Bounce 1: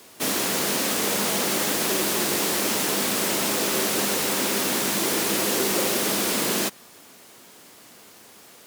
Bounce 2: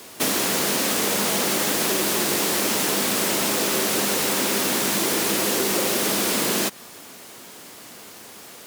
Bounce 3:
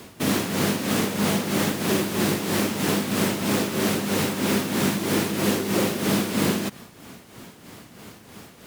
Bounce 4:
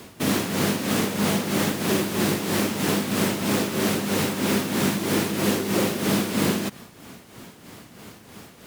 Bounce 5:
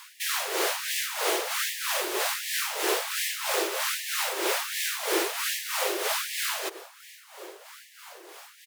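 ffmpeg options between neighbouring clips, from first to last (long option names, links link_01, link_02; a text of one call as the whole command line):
ffmpeg -i in.wav -af "acompressor=threshold=-26dB:ratio=4,volume=6.5dB" out.wav
ffmpeg -i in.wav -af "bass=frequency=250:gain=14,treble=frequency=4000:gain=-6,tremolo=f=3.1:d=0.58" out.wav
ffmpeg -i in.wav -af anull out.wav
ffmpeg -i in.wav -filter_complex "[0:a]asplit=2[link_01][link_02];[link_02]adelay=1633,volume=-17dB,highshelf=frequency=4000:gain=-36.7[link_03];[link_01][link_03]amix=inputs=2:normalize=0,afftfilt=real='re*gte(b*sr/1024,310*pow(1700/310,0.5+0.5*sin(2*PI*1.3*pts/sr)))':imag='im*gte(b*sr/1024,310*pow(1700/310,0.5+0.5*sin(2*PI*1.3*pts/sr)))':win_size=1024:overlap=0.75" out.wav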